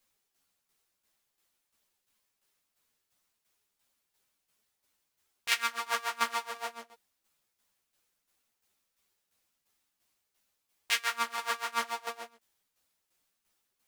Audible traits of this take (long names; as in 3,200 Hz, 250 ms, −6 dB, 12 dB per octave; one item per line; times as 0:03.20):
tremolo saw down 2.9 Hz, depth 65%
a shimmering, thickened sound